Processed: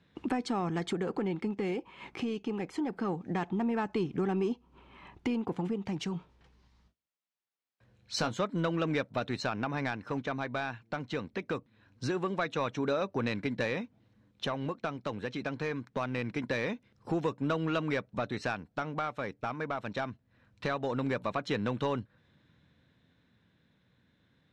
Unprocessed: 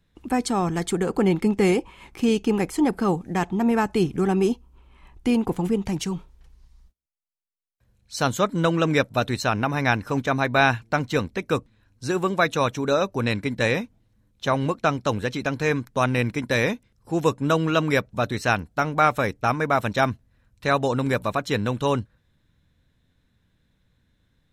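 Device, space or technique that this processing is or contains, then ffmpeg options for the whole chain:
AM radio: -filter_complex "[0:a]highpass=130,lowpass=4.1k,acompressor=threshold=-34dB:ratio=4,asoftclip=type=tanh:threshold=-25dB,tremolo=f=0.23:d=0.35,asettb=1/sr,asplit=3[a][b][c];[a]atrim=end=6.124[d];[b]atrim=start=6.12:end=8.39,asetpts=PTS-STARTPTS,afade=t=in:d=0.004:c=qsin,afade=t=out:st=2.266:d=0.004:c=qsin,asplit=2[e][f];[f]adelay=18,volume=-9dB[g];[e][g]amix=inputs=2:normalize=0,atrim=end_sample=100107[h];[c]atrim=start=8.386[i];[d][h]acrossfade=d=0.004:c1=hsin:c2=qsin[j];[j][i]acrossfade=d=0.004:c1=qsin:c2=hsin,volume=5dB"

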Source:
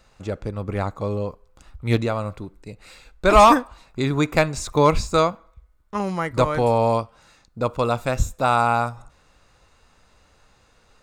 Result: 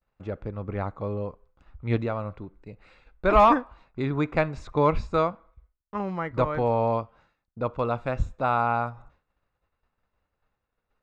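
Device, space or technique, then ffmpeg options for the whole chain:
hearing-loss simulation: -af "lowpass=2.4k,agate=range=-33dB:threshold=-46dB:ratio=3:detection=peak,volume=-5dB"

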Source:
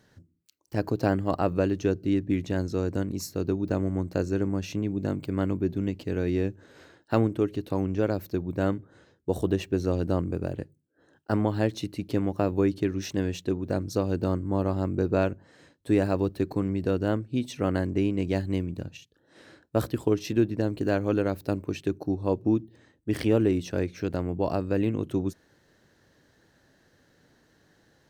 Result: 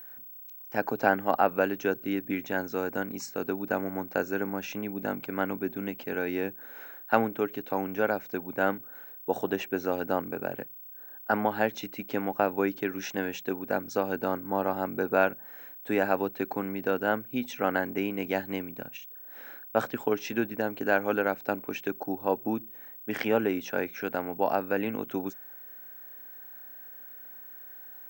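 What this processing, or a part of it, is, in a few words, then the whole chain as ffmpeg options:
old television with a line whistle: -af "highpass=f=170:w=0.5412,highpass=f=170:w=1.3066,equalizer=f=170:t=q:w=4:g=-10,equalizer=f=330:t=q:w=4:g=-9,equalizer=f=810:t=q:w=4:g=9,equalizer=f=1.5k:t=q:w=4:g=10,equalizer=f=2.3k:t=q:w=4:g=6,equalizer=f=4.4k:t=q:w=4:g=-8,lowpass=f=7.4k:w=0.5412,lowpass=f=7.4k:w=1.3066,aeval=exprs='val(0)+0.00708*sin(2*PI*15734*n/s)':c=same"

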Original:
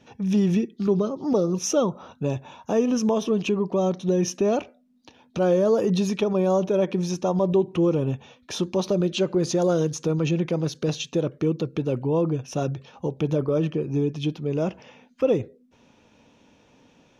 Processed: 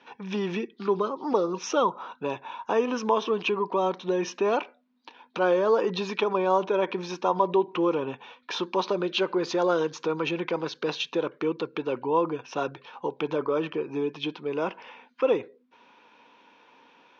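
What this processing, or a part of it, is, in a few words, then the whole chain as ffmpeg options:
phone earpiece: -af "highpass=430,equalizer=f=620:t=q:w=4:g=-7,equalizer=f=990:t=q:w=4:g=9,equalizer=f=1.5k:t=q:w=4:g=5,equalizer=f=2.3k:t=q:w=4:g=3,lowpass=f=4.5k:w=0.5412,lowpass=f=4.5k:w=1.3066,volume=2dB"

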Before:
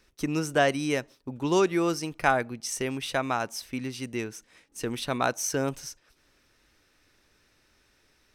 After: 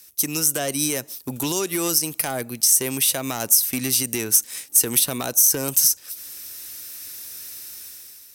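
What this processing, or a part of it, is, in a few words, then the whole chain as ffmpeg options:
FM broadcast chain: -filter_complex "[0:a]highpass=f=59:w=0.5412,highpass=f=59:w=1.3066,dynaudnorm=f=280:g=5:m=11.5dB,acrossover=split=660|1400[a][b][c];[a]acompressor=threshold=-20dB:ratio=4[d];[b]acompressor=threshold=-34dB:ratio=4[e];[c]acompressor=threshold=-35dB:ratio=4[f];[d][e][f]amix=inputs=3:normalize=0,aemphasis=mode=production:type=75fm,alimiter=limit=-15.5dB:level=0:latency=1:release=157,asoftclip=type=hard:threshold=-19.5dB,lowpass=f=15k:w=0.5412,lowpass=f=15k:w=1.3066,aemphasis=mode=production:type=75fm"

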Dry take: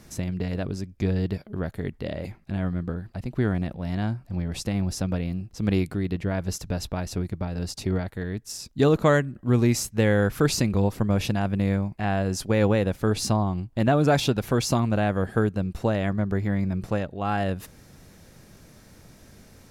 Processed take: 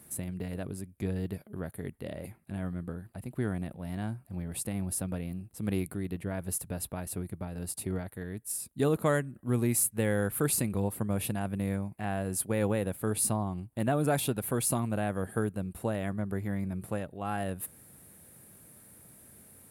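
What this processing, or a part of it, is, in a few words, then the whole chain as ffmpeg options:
budget condenser microphone: -af "highpass=81,highshelf=f=7.6k:t=q:w=3:g=11,volume=-7.5dB"

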